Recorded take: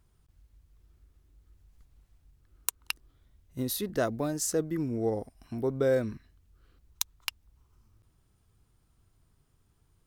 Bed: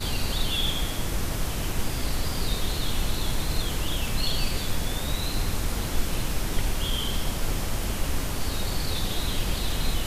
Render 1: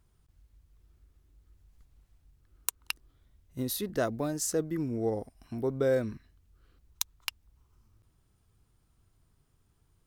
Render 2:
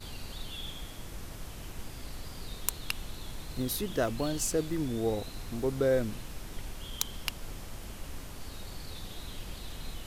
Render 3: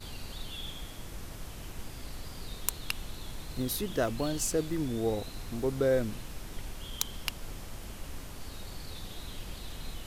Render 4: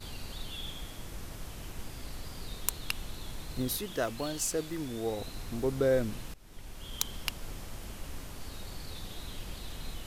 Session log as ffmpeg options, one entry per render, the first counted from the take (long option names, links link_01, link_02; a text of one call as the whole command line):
ffmpeg -i in.wav -af "volume=-1dB" out.wav
ffmpeg -i in.wav -i bed.wav -filter_complex "[1:a]volume=-14.5dB[link_01];[0:a][link_01]amix=inputs=2:normalize=0" out.wav
ffmpeg -i in.wav -af anull out.wav
ffmpeg -i in.wav -filter_complex "[0:a]asettb=1/sr,asplit=3[link_01][link_02][link_03];[link_01]atrim=end=3.774[link_04];[link_02]atrim=start=3.77:end=5.2,asetpts=PTS-STARTPTS,afade=type=in:duration=0.004:curve=qsin,afade=type=out:start_time=1.426:duration=0.004:curve=qsin,lowshelf=frequency=410:gain=-7[link_05];[link_03]atrim=start=5.196[link_06];[link_04][link_05]acrossfade=duration=0.004:curve1=hsin:curve2=qsin[link_07];[link_07][link_06]acrossfade=duration=0.004:curve1=qsin:curve2=hsin,asplit=2[link_08][link_09];[link_08]atrim=end=6.34,asetpts=PTS-STARTPTS,afade=type=out:start_time=6.336:duration=0.004:curve=hsin:silence=0.1[link_10];[link_09]atrim=start=6.34,asetpts=PTS-STARTPTS,afade=type=in:duration=0.67:silence=0.1[link_11];[link_10][link_11]concat=n=2:v=0:a=1" out.wav